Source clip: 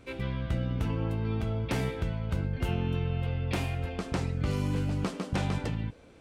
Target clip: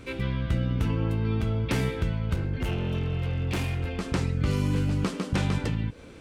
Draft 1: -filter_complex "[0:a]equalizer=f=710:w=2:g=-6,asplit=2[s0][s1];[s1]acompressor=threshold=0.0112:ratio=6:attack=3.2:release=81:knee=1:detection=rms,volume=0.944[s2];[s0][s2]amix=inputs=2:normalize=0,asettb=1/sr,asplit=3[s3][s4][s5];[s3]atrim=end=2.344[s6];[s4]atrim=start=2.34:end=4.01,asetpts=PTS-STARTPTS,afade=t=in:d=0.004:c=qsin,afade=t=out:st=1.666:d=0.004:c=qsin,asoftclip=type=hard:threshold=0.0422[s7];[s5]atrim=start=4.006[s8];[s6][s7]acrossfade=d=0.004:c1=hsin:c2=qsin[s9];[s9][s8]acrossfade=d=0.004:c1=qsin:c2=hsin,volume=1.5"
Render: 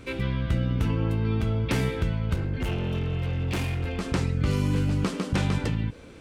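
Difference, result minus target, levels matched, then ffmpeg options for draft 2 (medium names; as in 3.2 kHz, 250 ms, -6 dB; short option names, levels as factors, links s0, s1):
compression: peak gain reduction -8 dB
-filter_complex "[0:a]equalizer=f=710:w=2:g=-6,asplit=2[s0][s1];[s1]acompressor=threshold=0.00376:ratio=6:attack=3.2:release=81:knee=1:detection=rms,volume=0.944[s2];[s0][s2]amix=inputs=2:normalize=0,asettb=1/sr,asplit=3[s3][s4][s5];[s3]atrim=end=2.344[s6];[s4]atrim=start=2.34:end=4.01,asetpts=PTS-STARTPTS,afade=t=in:d=0.004:c=qsin,afade=t=out:st=1.666:d=0.004:c=qsin,asoftclip=type=hard:threshold=0.0422[s7];[s5]atrim=start=4.006[s8];[s6][s7]acrossfade=d=0.004:c1=hsin:c2=qsin[s9];[s9][s8]acrossfade=d=0.004:c1=qsin:c2=hsin,volume=1.5"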